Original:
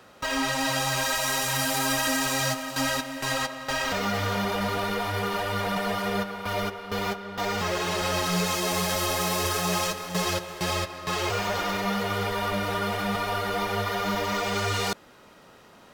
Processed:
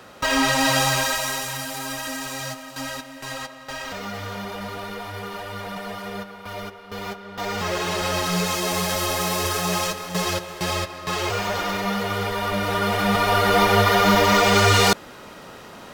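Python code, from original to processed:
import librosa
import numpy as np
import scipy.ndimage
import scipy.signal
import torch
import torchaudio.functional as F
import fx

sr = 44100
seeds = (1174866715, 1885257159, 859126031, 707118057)

y = fx.gain(x, sr, db=fx.line((0.83, 7.0), (1.66, -5.0), (6.84, -5.0), (7.74, 2.5), (12.42, 2.5), (13.58, 11.0)))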